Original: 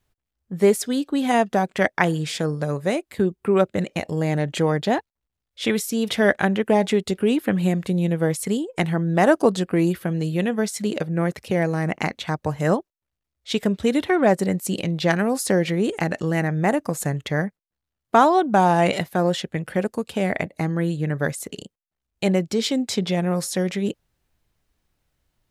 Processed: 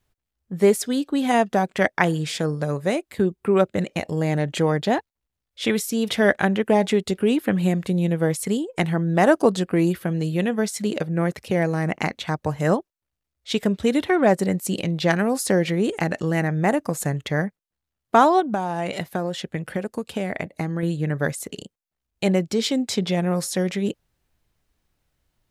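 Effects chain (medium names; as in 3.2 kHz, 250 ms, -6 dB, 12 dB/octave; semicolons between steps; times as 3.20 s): 18.40–20.83 s: compression 6:1, threshold -22 dBFS, peak gain reduction 10 dB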